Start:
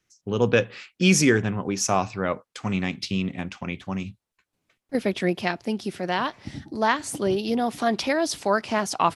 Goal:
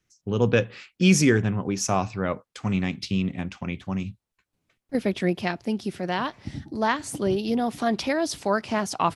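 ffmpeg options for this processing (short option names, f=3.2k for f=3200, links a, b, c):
-af "lowshelf=f=210:g=7,volume=-2.5dB"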